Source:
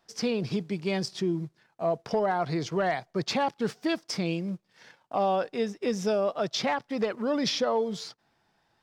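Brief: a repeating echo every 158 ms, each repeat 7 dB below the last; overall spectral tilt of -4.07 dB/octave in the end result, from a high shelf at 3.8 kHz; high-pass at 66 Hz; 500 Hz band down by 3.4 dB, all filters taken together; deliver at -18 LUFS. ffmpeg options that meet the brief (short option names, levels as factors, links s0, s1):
-af "highpass=66,equalizer=f=500:t=o:g=-4.5,highshelf=f=3800:g=5.5,aecho=1:1:158|316|474|632|790:0.447|0.201|0.0905|0.0407|0.0183,volume=3.76"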